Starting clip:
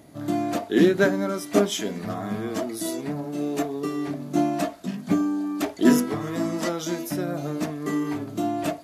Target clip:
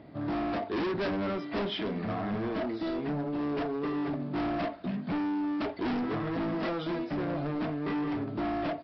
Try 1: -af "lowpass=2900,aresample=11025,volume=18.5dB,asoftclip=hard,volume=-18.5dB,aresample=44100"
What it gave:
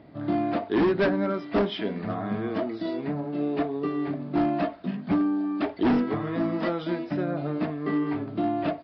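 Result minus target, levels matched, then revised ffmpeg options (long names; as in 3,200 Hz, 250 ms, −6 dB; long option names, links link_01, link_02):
gain into a clipping stage and back: distortion −7 dB
-af "lowpass=2900,aresample=11025,volume=29dB,asoftclip=hard,volume=-29dB,aresample=44100"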